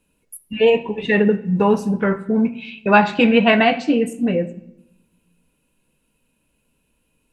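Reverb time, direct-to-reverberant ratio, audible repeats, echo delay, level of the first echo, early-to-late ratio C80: 0.85 s, 10.5 dB, none, none, none, 18.5 dB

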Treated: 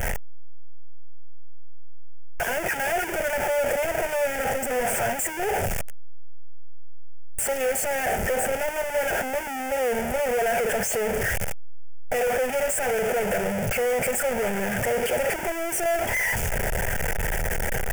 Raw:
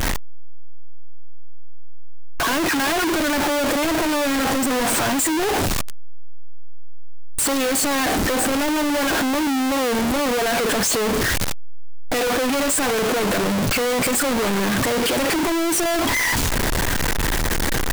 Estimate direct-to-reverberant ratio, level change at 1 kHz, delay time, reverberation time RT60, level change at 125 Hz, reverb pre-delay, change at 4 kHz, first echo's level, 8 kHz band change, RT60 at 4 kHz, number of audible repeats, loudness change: none, -5.0 dB, none, none, -5.0 dB, none, -13.0 dB, none, -7.0 dB, none, none, -5.0 dB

